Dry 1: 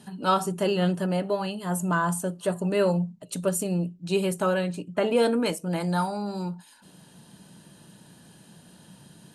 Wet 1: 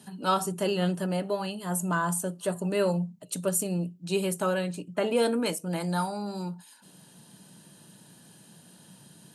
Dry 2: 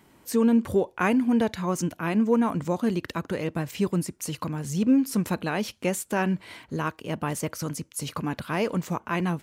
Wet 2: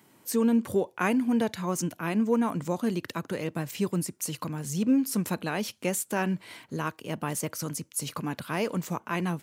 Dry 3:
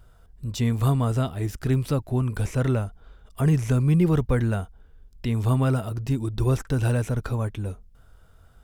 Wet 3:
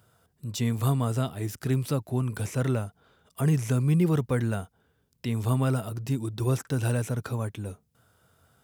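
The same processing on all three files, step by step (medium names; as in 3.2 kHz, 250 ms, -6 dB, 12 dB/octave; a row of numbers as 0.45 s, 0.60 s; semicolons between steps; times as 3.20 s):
high-pass 100 Hz 24 dB/octave; treble shelf 5.7 kHz +7 dB; trim -3 dB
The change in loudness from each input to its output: -2.5 LU, -2.5 LU, -3.5 LU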